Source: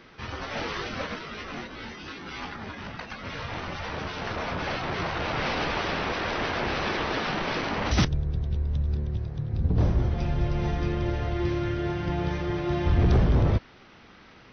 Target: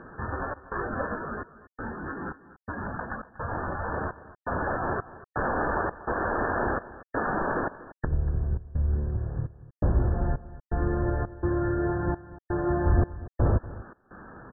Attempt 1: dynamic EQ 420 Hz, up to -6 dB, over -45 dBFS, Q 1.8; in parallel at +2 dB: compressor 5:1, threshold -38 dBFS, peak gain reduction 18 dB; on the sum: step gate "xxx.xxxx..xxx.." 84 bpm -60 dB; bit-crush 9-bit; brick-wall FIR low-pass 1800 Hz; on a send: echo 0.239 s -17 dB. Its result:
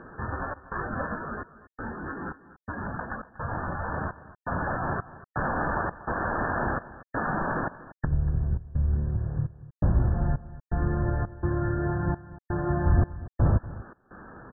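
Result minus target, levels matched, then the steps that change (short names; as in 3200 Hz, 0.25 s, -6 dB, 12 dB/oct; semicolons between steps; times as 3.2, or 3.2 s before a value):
500 Hz band -3.5 dB
change: dynamic EQ 150 Hz, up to -6 dB, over -45 dBFS, Q 1.8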